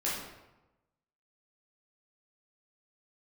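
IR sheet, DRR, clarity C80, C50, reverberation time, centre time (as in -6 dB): -7.5 dB, 4.5 dB, 1.0 dB, 1.0 s, 64 ms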